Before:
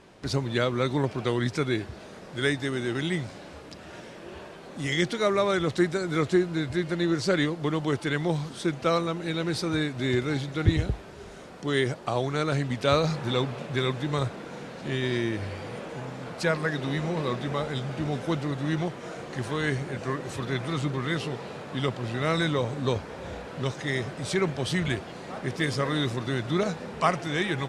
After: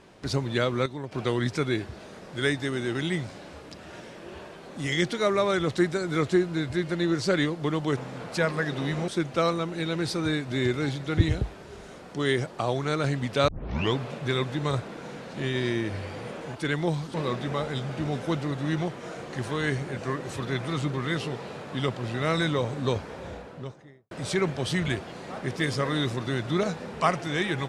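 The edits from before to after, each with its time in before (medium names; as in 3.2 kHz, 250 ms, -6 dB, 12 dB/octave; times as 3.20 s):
0.86–1.12 s: gain -10 dB
7.97–8.56 s: swap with 16.03–17.14 s
12.96 s: tape start 0.46 s
23.06–24.11 s: studio fade out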